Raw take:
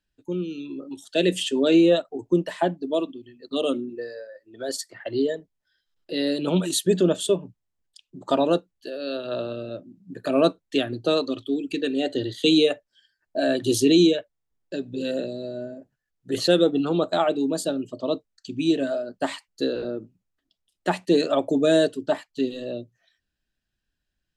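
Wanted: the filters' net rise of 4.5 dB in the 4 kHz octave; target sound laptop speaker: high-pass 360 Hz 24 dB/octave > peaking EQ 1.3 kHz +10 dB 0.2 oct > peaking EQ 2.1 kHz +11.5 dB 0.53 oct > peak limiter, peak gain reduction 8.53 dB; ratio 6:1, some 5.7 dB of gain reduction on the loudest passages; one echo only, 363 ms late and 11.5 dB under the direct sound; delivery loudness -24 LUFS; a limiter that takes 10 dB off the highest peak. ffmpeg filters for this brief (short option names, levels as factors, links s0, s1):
-af "equalizer=f=4000:t=o:g=3.5,acompressor=threshold=0.112:ratio=6,alimiter=limit=0.106:level=0:latency=1,highpass=f=360:w=0.5412,highpass=f=360:w=1.3066,equalizer=f=1300:t=o:w=0.2:g=10,equalizer=f=2100:t=o:w=0.53:g=11.5,aecho=1:1:363:0.266,volume=3.16,alimiter=limit=0.211:level=0:latency=1"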